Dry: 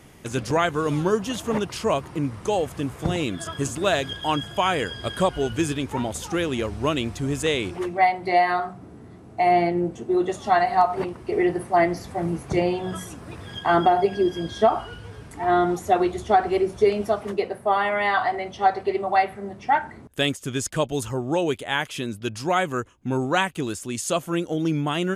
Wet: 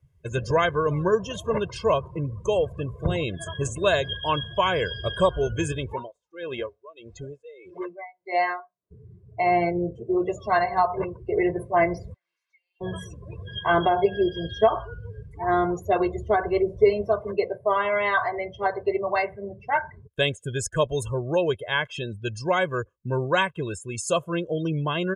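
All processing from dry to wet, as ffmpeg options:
-filter_complex "[0:a]asettb=1/sr,asplit=3[s0][s1][s2];[s0]atrim=end=5.934[s3];[s1]atrim=start=5.93:end=8.91,asetpts=PTS-STARTPTS,afade=t=in:d=0.004:c=qsin,afade=t=out:st=2.976:d=0.004:c=qsin,lowpass=7700,equalizer=f=83:w=0.6:g=-13.5,aeval=exprs='val(0)*pow(10,-20*(0.5-0.5*cos(2*PI*1.6*n/s))/20)':c=same[s4];[s2]atrim=start=8.906[s5];[s3][s4]acrossfade=d=0.004:c1=hsin:c2=qsin[s6];[s6][s5]acrossfade=d=0.004:c1=qsin:c2=hsin,asettb=1/sr,asplit=3[s7][s8][s9];[s7]atrim=end=12.144[s10];[s8]atrim=start=12.14:end=12.81,asetpts=PTS-STARTPTS,afade=t=in:d=0.004:c=qsin,afade=t=out:st=0.666:d=0.004:c=qsin,asuperpass=centerf=3200:order=4:qfactor=0.93,acompressor=threshold=0.00355:ratio=20:attack=3.2:release=140:knee=1:detection=peak[s11];[s9]atrim=start=12.806[s12];[s10][s11]acrossfade=d=0.004:c1=hsin:c2=qsin[s13];[s13][s12]acrossfade=d=0.004:c1=qsin:c2=hsin,aecho=1:1:1.9:0.68,afftdn=nr=29:nf=-33,lowshelf=f=140:g=3,volume=0.794"

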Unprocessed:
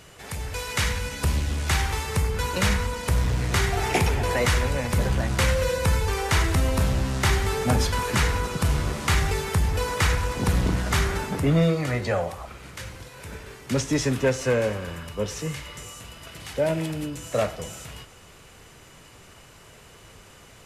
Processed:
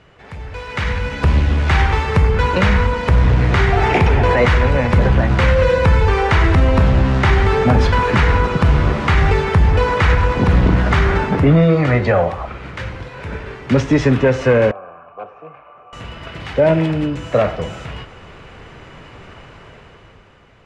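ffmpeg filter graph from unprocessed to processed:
-filter_complex "[0:a]asettb=1/sr,asplit=3[s0][s1][s2];[s0]atrim=end=14.714[s3];[s1]atrim=start=14.71:end=15.93,asetpts=PTS-STARTPTS,afade=t=in:d=0.004:c=qsin,afade=t=out:st=1.216:d=0.004:c=qsin,highshelf=f=2400:t=q:w=1.5:g=-14,aeval=exprs='0.075*(abs(mod(val(0)/0.075+3,4)-2)-1)':c=same,asplit=3[s4][s5][s6];[s4]bandpass=f=730:t=q:w=8,volume=1[s7];[s5]bandpass=f=1090:t=q:w=8,volume=0.501[s8];[s6]bandpass=f=2440:t=q:w=8,volume=0.355[s9];[s7][s8][s9]amix=inputs=3:normalize=0[s10];[s2]atrim=start=15.926[s11];[s3][s10]acrossfade=d=0.004:c1=hsin:c2=qsin[s12];[s12][s11]acrossfade=d=0.004:c1=qsin:c2=hsin,lowpass=2500,alimiter=limit=0.158:level=0:latency=1:release=55,dynaudnorm=f=110:g=17:m=3.55,volume=1.12"

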